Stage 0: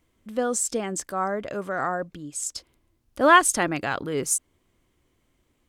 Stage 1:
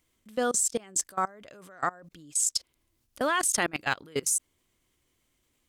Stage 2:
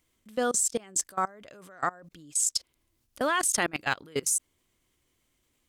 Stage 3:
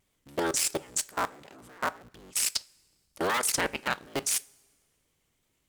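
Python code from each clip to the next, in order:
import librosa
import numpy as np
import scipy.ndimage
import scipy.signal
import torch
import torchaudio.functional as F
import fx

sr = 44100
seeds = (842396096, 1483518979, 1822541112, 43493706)

y1 = fx.high_shelf(x, sr, hz=2200.0, db=11.5)
y1 = fx.level_steps(y1, sr, step_db=24)
y1 = y1 * 10.0 ** (-1.5 / 20.0)
y2 = y1
y3 = fx.cycle_switch(y2, sr, every=3, mode='inverted')
y3 = fx.vibrato(y3, sr, rate_hz=3.0, depth_cents=67.0)
y3 = fx.rev_double_slope(y3, sr, seeds[0], early_s=0.25, late_s=1.5, knee_db=-19, drr_db=15.5)
y3 = y3 * 10.0 ** (-1.5 / 20.0)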